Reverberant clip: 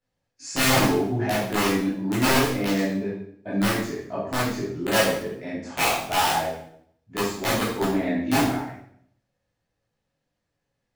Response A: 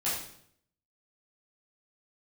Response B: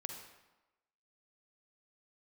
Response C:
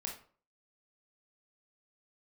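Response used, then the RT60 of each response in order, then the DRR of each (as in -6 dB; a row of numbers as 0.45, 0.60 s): A; 0.65, 1.1, 0.45 s; -10.0, 3.5, -0.5 dB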